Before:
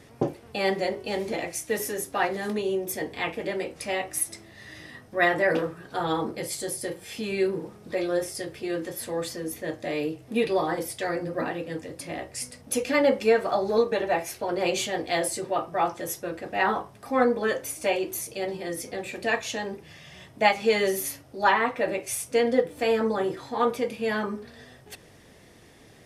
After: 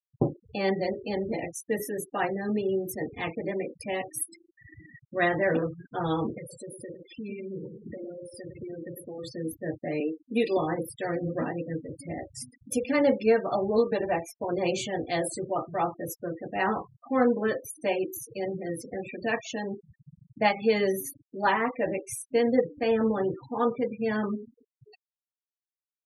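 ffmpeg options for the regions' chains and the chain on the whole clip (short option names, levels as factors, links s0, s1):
-filter_complex "[0:a]asettb=1/sr,asplit=3[s0][s1][s2];[s0]atrim=end=6.384[s3];[s1]atrim=start=6.38:end=9.24,asetpts=PTS-STARTPTS,afade=t=in:d=0.004:c=qsin,afade=t=out:st=2.856:d=0.004:c=qsin,adynamicequalizer=threshold=0.00794:dfrequency=300:dqfactor=1.4:tfrequency=300:tqfactor=1.4:attack=5:release=100:ratio=0.375:range=2:mode=cutabove:tftype=bell,acompressor=threshold=0.02:ratio=12:attack=3.2:release=140:knee=1:detection=peak,asplit=2[s4][s5];[s5]adelay=104,lowpass=f=2100:p=1,volume=0.501,asplit=2[s6][s7];[s7]adelay=104,lowpass=f=2100:p=1,volume=0.45,asplit=2[s8][s9];[s9]adelay=104,lowpass=f=2100:p=1,volume=0.45,asplit=2[s10][s11];[s11]adelay=104,lowpass=f=2100:p=1,volume=0.45,asplit=2[s12][s13];[s13]adelay=104,lowpass=f=2100:p=1,volume=0.45[s14];[s4][s6][s8][s10][s12][s14]amix=inputs=6:normalize=0,atrim=end_sample=126126[s15];[s2]atrim=start=9.236[s16];[s3][s15]acrossfade=d=0.004:c1=hsin:c2=qsin[s17];[s17][s16]acrossfade=d=0.004:c1=qsin:c2=hsin,asettb=1/sr,asplit=3[s18][s19][s20];[s18]atrim=end=10.004[s21];[s19]atrim=start=10:end=10.57,asetpts=PTS-STARTPTS,afade=t=in:d=0.004:c=qsin,afade=t=out:st=0.566:d=0.004:c=qsin,highpass=f=220:w=0.5412,highpass=f=220:w=1.3066,highshelf=f=3200:g=6,acrusher=bits=8:mix=0:aa=0.5[s22];[s20]atrim=start=10.566[s23];[s21][s22]acrossfade=d=0.004:c1=hsin:c2=qsin[s24];[s24][s23]acrossfade=d=0.004:c1=qsin:c2=hsin,afftfilt=real='re*gte(hypot(re,im),0.0282)':imag='im*gte(hypot(re,im),0.0282)':win_size=1024:overlap=0.75,lowshelf=f=260:g=12,volume=0.596"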